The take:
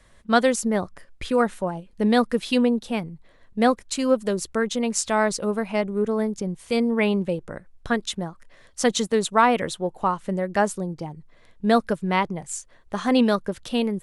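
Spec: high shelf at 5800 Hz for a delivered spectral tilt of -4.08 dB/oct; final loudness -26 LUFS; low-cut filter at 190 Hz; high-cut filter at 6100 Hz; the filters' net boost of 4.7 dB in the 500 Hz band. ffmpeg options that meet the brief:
-af "highpass=190,lowpass=6.1k,equalizer=f=500:t=o:g=5.5,highshelf=f=5.8k:g=-6,volume=-4.5dB"

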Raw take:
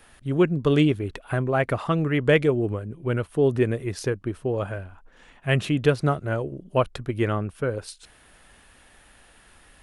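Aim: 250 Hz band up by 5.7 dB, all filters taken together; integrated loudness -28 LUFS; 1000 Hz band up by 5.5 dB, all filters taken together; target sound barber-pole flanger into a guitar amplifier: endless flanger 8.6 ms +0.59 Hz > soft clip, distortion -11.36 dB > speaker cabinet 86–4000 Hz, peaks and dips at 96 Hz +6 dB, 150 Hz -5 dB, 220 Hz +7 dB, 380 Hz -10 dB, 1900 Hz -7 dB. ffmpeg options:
-filter_complex "[0:a]equalizer=f=250:t=o:g=7.5,equalizer=f=1k:t=o:g=7.5,asplit=2[a][b];[b]adelay=8.6,afreqshift=0.59[c];[a][c]amix=inputs=2:normalize=1,asoftclip=threshold=-16.5dB,highpass=86,equalizer=f=96:t=q:w=4:g=6,equalizer=f=150:t=q:w=4:g=-5,equalizer=f=220:t=q:w=4:g=7,equalizer=f=380:t=q:w=4:g=-10,equalizer=f=1.9k:t=q:w=4:g=-7,lowpass=f=4k:w=0.5412,lowpass=f=4k:w=1.3066,volume=-1dB"

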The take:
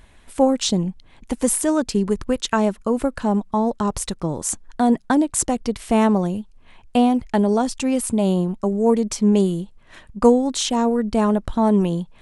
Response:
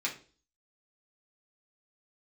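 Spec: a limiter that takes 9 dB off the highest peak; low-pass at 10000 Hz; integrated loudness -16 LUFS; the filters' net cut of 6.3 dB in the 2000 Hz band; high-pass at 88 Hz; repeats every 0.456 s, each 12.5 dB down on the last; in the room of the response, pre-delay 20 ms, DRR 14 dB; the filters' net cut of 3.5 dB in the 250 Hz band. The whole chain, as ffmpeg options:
-filter_complex "[0:a]highpass=88,lowpass=10k,equalizer=f=250:t=o:g=-4,equalizer=f=2k:t=o:g=-9,alimiter=limit=-14dB:level=0:latency=1,aecho=1:1:456|912|1368:0.237|0.0569|0.0137,asplit=2[a][b];[1:a]atrim=start_sample=2205,adelay=20[c];[b][c]afir=irnorm=-1:irlink=0,volume=-19.5dB[d];[a][d]amix=inputs=2:normalize=0,volume=8.5dB"

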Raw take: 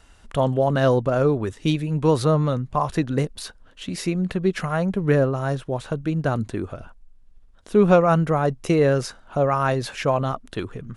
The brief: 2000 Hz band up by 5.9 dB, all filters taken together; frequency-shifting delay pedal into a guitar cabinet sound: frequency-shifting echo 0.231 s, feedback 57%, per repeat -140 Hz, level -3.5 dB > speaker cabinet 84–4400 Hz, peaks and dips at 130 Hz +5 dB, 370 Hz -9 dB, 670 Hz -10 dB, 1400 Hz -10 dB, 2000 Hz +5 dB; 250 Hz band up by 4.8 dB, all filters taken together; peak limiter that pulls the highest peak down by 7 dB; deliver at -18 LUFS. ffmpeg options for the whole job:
-filter_complex "[0:a]equalizer=f=250:t=o:g=8.5,equalizer=f=2k:t=o:g=9,alimiter=limit=-9dB:level=0:latency=1,asplit=9[a][b][c][d][e][f][g][h][i];[b]adelay=231,afreqshift=-140,volume=-3.5dB[j];[c]adelay=462,afreqshift=-280,volume=-8.4dB[k];[d]adelay=693,afreqshift=-420,volume=-13.3dB[l];[e]adelay=924,afreqshift=-560,volume=-18.1dB[m];[f]adelay=1155,afreqshift=-700,volume=-23dB[n];[g]adelay=1386,afreqshift=-840,volume=-27.9dB[o];[h]adelay=1617,afreqshift=-980,volume=-32.8dB[p];[i]adelay=1848,afreqshift=-1120,volume=-37.7dB[q];[a][j][k][l][m][n][o][p][q]amix=inputs=9:normalize=0,highpass=84,equalizer=f=130:t=q:w=4:g=5,equalizer=f=370:t=q:w=4:g=-9,equalizer=f=670:t=q:w=4:g=-10,equalizer=f=1.4k:t=q:w=4:g=-10,equalizer=f=2k:t=q:w=4:g=5,lowpass=f=4.4k:w=0.5412,lowpass=f=4.4k:w=1.3066,volume=2dB"

